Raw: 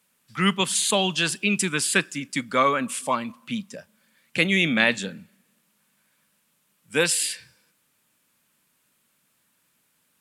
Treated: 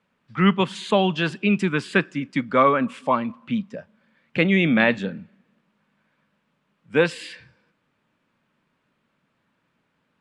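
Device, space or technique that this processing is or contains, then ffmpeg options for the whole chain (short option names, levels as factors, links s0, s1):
phone in a pocket: -af "lowpass=3500,highshelf=f=2100:g=-11.5,volume=1.88"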